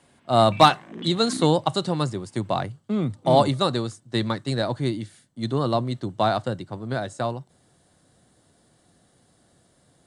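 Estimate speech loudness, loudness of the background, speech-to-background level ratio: −23.5 LKFS, −38.5 LKFS, 15.0 dB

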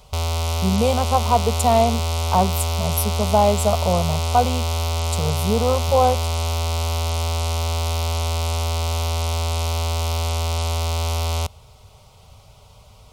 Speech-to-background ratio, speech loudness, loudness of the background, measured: 2.0 dB, −21.5 LKFS, −23.5 LKFS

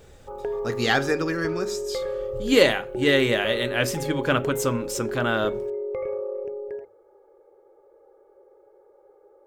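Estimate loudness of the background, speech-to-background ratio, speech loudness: −31.0 LKFS, 7.0 dB, −24.0 LKFS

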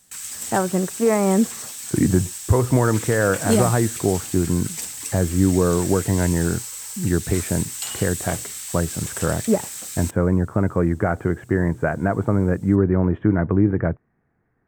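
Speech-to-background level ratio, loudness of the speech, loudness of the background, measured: 8.0 dB, −21.5 LKFS, −29.5 LKFS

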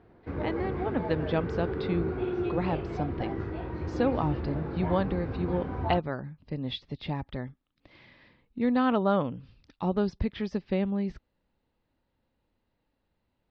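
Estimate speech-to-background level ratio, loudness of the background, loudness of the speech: 3.0 dB, −34.0 LKFS, −31.0 LKFS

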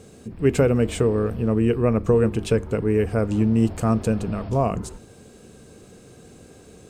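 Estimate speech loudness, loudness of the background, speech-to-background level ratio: −22.0 LKFS, −40.0 LKFS, 18.0 dB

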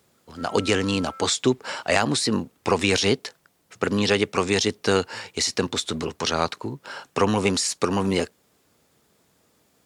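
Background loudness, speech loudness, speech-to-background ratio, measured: −43.0 LKFS, −23.5 LKFS, 19.5 dB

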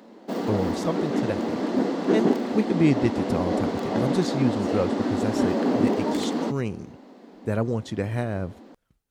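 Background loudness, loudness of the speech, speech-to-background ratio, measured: −26.0 LKFS, −28.5 LKFS, −2.5 dB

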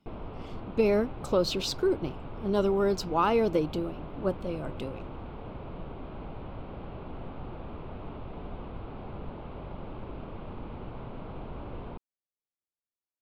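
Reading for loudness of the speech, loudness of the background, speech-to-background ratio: −29.0 LKFS, −42.5 LKFS, 13.5 dB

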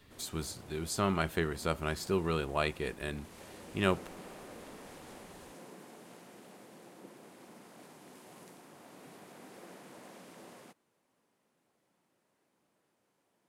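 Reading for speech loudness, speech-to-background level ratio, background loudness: −34.5 LKFS, 18.0 dB, −52.5 LKFS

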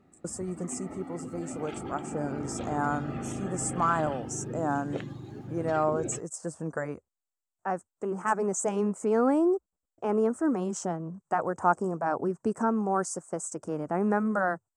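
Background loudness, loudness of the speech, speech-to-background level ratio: −38.5 LKFS, −30.5 LKFS, 8.0 dB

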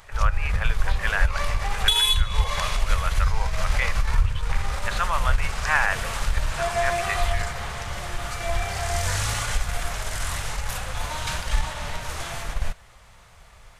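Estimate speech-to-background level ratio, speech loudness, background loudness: −2.5 dB, −29.5 LKFS, −27.0 LKFS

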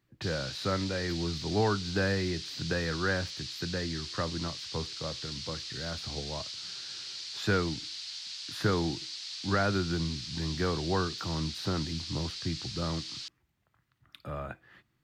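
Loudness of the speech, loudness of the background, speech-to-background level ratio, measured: −34.0 LKFS, −38.0 LKFS, 4.0 dB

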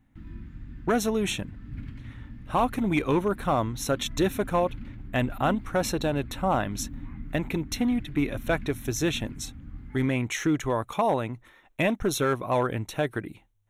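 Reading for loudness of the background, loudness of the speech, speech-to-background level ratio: −42.5 LKFS, −27.5 LKFS, 15.0 dB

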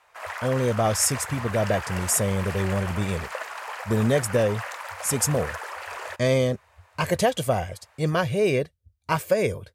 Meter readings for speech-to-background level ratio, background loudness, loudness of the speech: 9.5 dB, −34.5 LKFS, −25.0 LKFS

